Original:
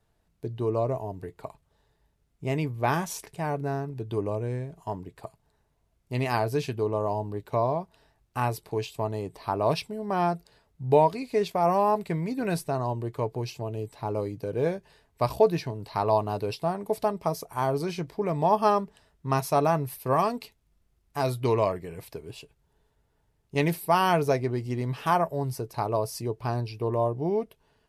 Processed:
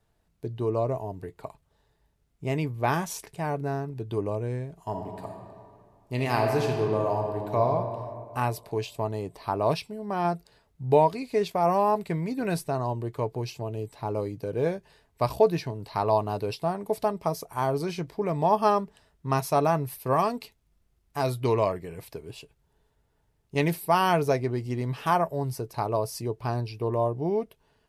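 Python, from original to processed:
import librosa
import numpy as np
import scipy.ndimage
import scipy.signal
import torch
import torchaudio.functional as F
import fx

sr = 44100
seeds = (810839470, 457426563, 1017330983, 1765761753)

y = fx.reverb_throw(x, sr, start_s=4.78, length_s=2.9, rt60_s=2.2, drr_db=2.0)
y = fx.comb_fb(y, sr, f0_hz=69.0, decay_s=0.25, harmonics='odd', damping=0.0, mix_pct=30, at=(9.77, 10.25))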